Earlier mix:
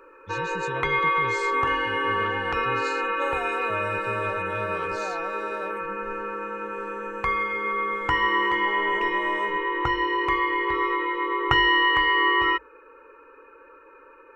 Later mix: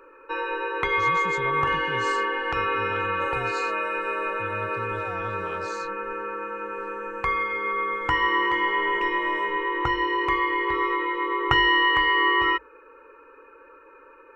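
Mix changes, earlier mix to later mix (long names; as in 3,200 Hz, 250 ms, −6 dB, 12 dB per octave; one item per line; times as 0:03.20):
speech: entry +0.70 s
second sound −6.0 dB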